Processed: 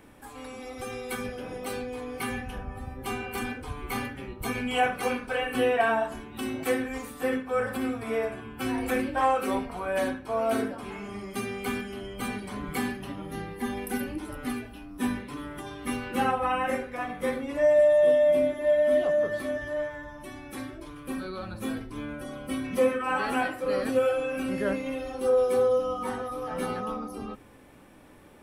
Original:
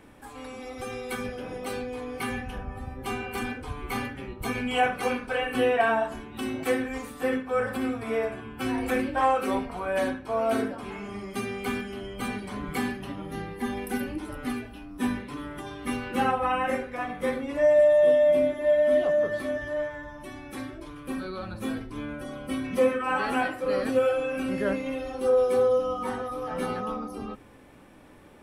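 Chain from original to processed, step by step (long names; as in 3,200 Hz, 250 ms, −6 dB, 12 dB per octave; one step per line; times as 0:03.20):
high-shelf EQ 9,900 Hz +6.5 dB
level −1 dB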